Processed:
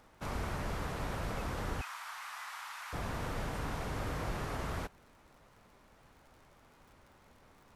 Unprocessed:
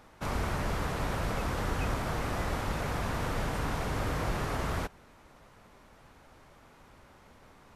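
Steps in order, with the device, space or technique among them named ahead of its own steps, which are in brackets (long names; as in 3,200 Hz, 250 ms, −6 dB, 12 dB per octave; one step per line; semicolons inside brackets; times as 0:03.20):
0:01.81–0:02.93: Butterworth high-pass 930 Hz 36 dB per octave
vinyl LP (surface crackle 70 per second −48 dBFS; pink noise bed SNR 41 dB)
level −5.5 dB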